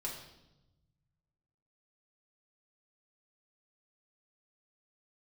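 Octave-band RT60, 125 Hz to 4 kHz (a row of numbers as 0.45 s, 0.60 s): 2.3 s, 1.5 s, 1.0 s, 0.85 s, 0.75 s, 0.85 s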